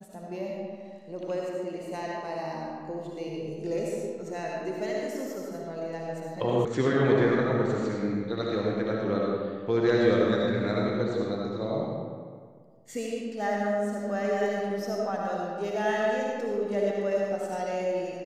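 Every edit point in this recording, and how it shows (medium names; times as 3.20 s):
6.65 s: sound stops dead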